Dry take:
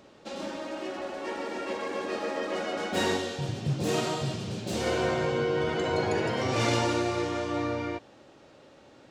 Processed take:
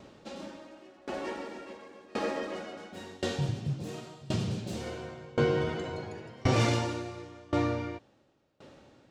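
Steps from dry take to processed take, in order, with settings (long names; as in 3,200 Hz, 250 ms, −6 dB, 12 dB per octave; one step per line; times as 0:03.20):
bass and treble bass +6 dB, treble 0 dB
tremolo with a ramp in dB decaying 0.93 Hz, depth 26 dB
level +2.5 dB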